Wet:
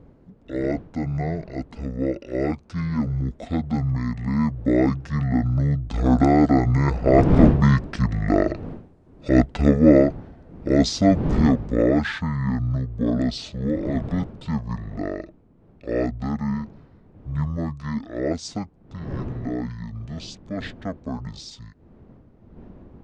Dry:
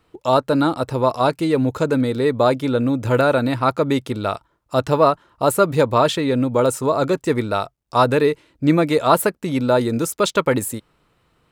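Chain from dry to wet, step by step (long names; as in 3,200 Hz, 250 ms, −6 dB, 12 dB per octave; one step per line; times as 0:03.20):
wind on the microphone 510 Hz −30 dBFS
source passing by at 0:04.11, 10 m/s, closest 10 metres
wrong playback speed 15 ips tape played at 7.5 ips
level +2.5 dB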